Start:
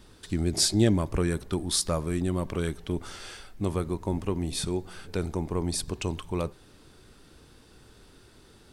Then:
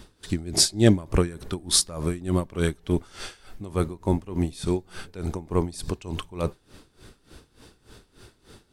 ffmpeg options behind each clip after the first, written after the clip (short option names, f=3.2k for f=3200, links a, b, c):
-af "aeval=exprs='val(0)*pow(10,-19*(0.5-0.5*cos(2*PI*3.4*n/s))/20)':c=same,volume=7.5dB"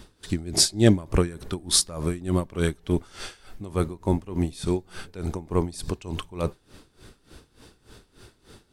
-af anull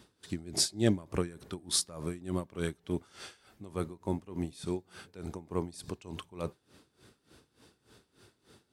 -af "highpass=98,volume=-9dB"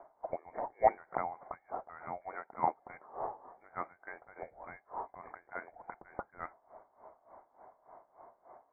-af "highpass=f=1.8k:t=q:w=7.3,lowpass=f=2.1k:t=q:w=0.5098,lowpass=f=2.1k:t=q:w=0.6013,lowpass=f=2.1k:t=q:w=0.9,lowpass=f=2.1k:t=q:w=2.563,afreqshift=-2500,volume=5dB"